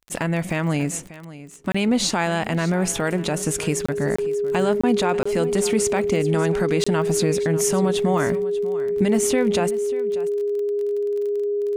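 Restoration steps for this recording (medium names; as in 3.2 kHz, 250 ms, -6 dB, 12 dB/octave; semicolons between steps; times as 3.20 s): de-click; band-stop 410 Hz, Q 30; interpolate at 1.72/3.86/4.16/4.81/5.23/6.84 s, 25 ms; inverse comb 590 ms -16.5 dB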